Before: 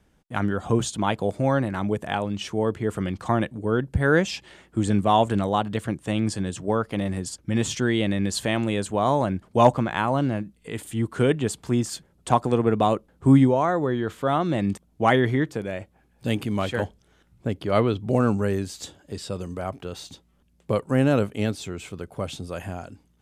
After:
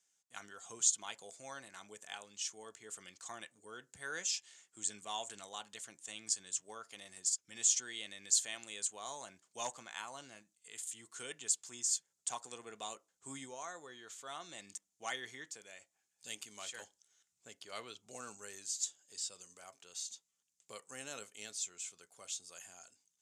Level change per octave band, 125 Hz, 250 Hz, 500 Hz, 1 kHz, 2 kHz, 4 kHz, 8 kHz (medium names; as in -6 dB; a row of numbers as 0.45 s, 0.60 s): under -40 dB, -35.5 dB, -28.5 dB, -23.0 dB, -17.0 dB, -8.5 dB, +3.0 dB